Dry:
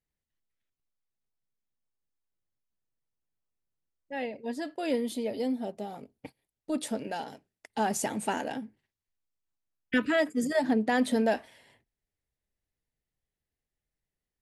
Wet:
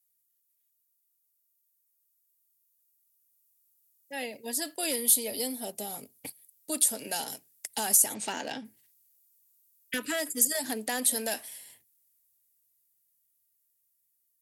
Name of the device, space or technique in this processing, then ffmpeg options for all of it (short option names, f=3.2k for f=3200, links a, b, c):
FM broadcast chain: -filter_complex "[0:a]asplit=3[a][b][c];[a]afade=t=out:st=8.13:d=0.02[d];[b]lowpass=f=5.2k:w=0.5412,lowpass=f=5.2k:w=1.3066,afade=t=in:st=8.13:d=0.02,afade=t=out:st=8.64:d=0.02[e];[c]afade=t=in:st=8.64:d=0.02[f];[d][e][f]amix=inputs=3:normalize=0,highpass=71,dynaudnorm=f=640:g=11:m=8.5dB,acrossover=split=330|1200[g][h][i];[g]acompressor=threshold=-32dB:ratio=4[j];[h]acompressor=threshold=-23dB:ratio=4[k];[i]acompressor=threshold=-29dB:ratio=4[l];[j][k][l]amix=inputs=3:normalize=0,aemphasis=mode=production:type=75fm,alimiter=limit=-13dB:level=0:latency=1:release=238,asoftclip=type=hard:threshold=-17dB,lowpass=f=15k:w=0.5412,lowpass=f=15k:w=1.3066,aemphasis=mode=production:type=75fm,volume=-9dB"